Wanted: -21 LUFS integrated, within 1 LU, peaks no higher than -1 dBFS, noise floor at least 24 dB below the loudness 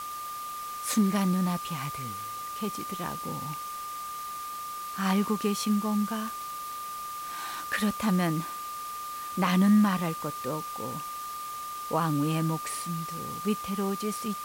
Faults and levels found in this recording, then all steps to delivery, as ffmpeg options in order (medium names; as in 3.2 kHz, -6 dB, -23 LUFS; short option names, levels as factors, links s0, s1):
steady tone 1.2 kHz; tone level -35 dBFS; noise floor -37 dBFS; noise floor target -54 dBFS; loudness -30.0 LUFS; peak level -14.0 dBFS; loudness target -21.0 LUFS
-> -af "bandreject=f=1200:w=30"
-af "afftdn=nr=17:nf=-37"
-af "volume=2.82"